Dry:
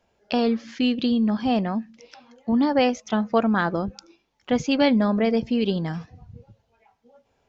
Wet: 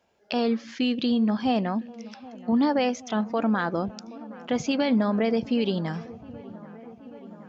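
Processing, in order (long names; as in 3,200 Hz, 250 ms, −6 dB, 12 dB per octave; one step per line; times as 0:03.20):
high-pass filter 150 Hz 6 dB per octave
brickwall limiter −15 dBFS, peak gain reduction 8 dB
on a send: delay with a low-pass on its return 774 ms, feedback 76%, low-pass 1,600 Hz, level −19.5 dB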